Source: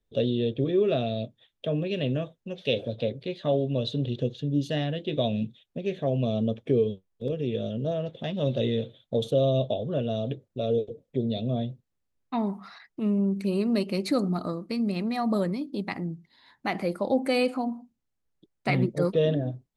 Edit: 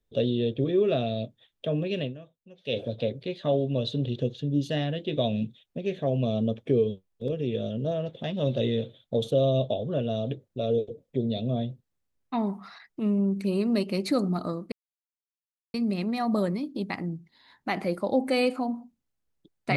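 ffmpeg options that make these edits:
-filter_complex "[0:a]asplit=4[a][b][c][d];[a]atrim=end=2.14,asetpts=PTS-STARTPTS,afade=t=out:st=1.99:d=0.15:silence=0.177828[e];[b]atrim=start=2.14:end=2.63,asetpts=PTS-STARTPTS,volume=-15dB[f];[c]atrim=start=2.63:end=14.72,asetpts=PTS-STARTPTS,afade=t=in:d=0.15:silence=0.177828,afade=t=out:st=12.086:d=0.004:c=hsin,apad=pad_dur=1.02[g];[d]atrim=start=14.72,asetpts=PTS-STARTPTS,afade=t=in:d=0.004:c=hsin[h];[e][f][g][h]concat=n=4:v=0:a=1"

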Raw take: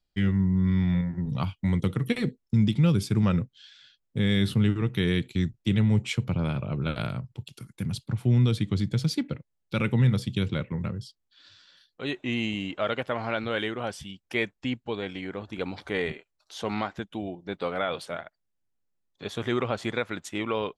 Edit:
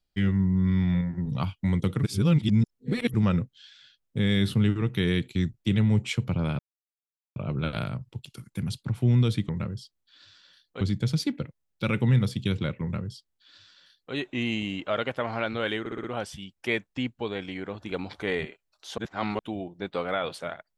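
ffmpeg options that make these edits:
-filter_complex "[0:a]asplit=12[a][b][c][d][e][f][g][h][i][j][k][l];[a]atrim=end=2.032[m];[b]atrim=start=2.028:end=3.142,asetpts=PTS-STARTPTS,areverse[n];[c]atrim=start=3.138:end=6.59,asetpts=PTS-STARTPTS,afade=t=out:st=3.448:d=0.004:c=hsin,apad=pad_dur=0.77[o];[d]atrim=start=6.59:end=8.722,asetpts=PTS-STARTPTS,afade=t=in:d=0.004:c=hsin[p];[e]atrim=start=10.728:end=12.052[q];[f]atrim=start=8.718:end=13.772[r];[g]atrim=start=13.708:end=13.772[s];[h]atrim=start=13.708:end=13.772[t];[i]atrim=start=13.708:end=13.772[u];[j]atrim=start=13.708:end=16.652[v];[k]atrim=start=16.648:end=17.062,asetpts=PTS-STARTPTS,areverse[w];[l]atrim=start=17.058[x];[m][n]acrossfade=d=0.004:c1=hsin:c2=hsin[y];[o][p]concat=n=2:v=0:a=1[z];[y][z]acrossfade=d=0.004:c1=hsin:c2=hsin[aa];[aa][q]acrossfade=d=0.004:c1=hsin:c2=hsin[ab];[ab][r]acrossfade=d=0.004:c1=hsin:c2=hsin[ac];[ac][s]acrossfade=d=0.004:c1=hsin:c2=hsin[ad];[ad][t]acrossfade=d=0.004:c1=hsin:c2=hsin[ae];[ae][u]acrossfade=d=0.004:c1=hsin:c2=hsin[af];[af][v]acrossfade=d=0.004:c1=hsin:c2=hsin[ag];[ag][w]acrossfade=d=0.004:c1=hsin:c2=hsin[ah];[ah][x]acrossfade=d=0.004:c1=hsin:c2=hsin"

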